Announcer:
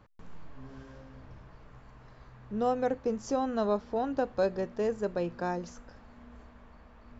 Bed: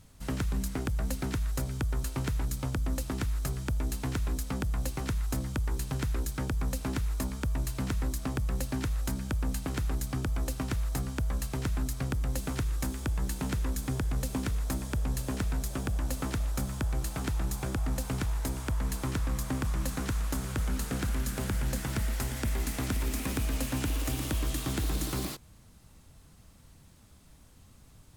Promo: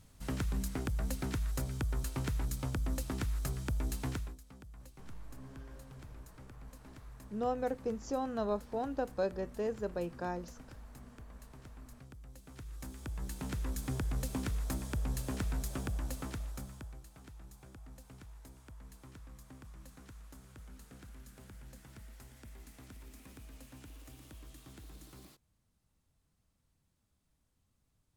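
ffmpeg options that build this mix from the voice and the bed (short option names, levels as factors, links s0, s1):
-filter_complex "[0:a]adelay=4800,volume=0.531[s0];[1:a]volume=4.47,afade=t=out:st=4.08:d=0.28:silence=0.133352,afade=t=in:st=12.45:d=1.48:silence=0.141254,afade=t=out:st=15.75:d=1.28:silence=0.141254[s1];[s0][s1]amix=inputs=2:normalize=0"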